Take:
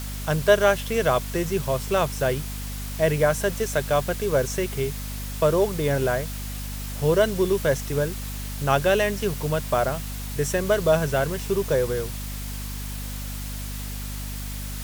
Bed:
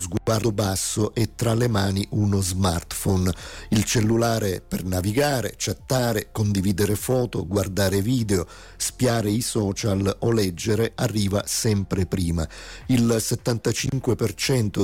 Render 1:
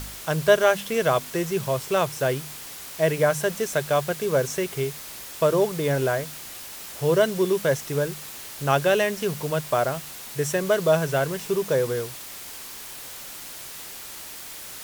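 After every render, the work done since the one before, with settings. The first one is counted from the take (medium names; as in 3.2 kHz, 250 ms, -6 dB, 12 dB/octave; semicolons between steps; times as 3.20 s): de-hum 50 Hz, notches 5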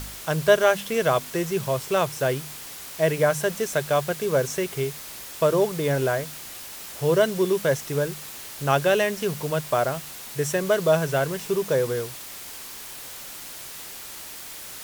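no audible change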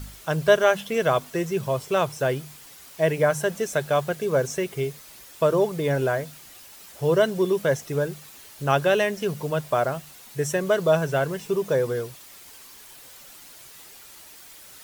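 noise reduction 9 dB, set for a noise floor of -39 dBFS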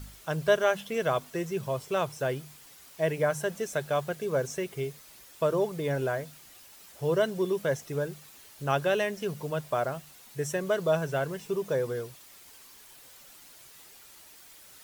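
trim -6 dB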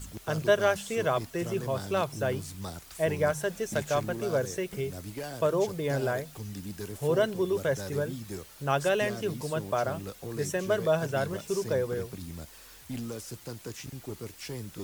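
add bed -17.5 dB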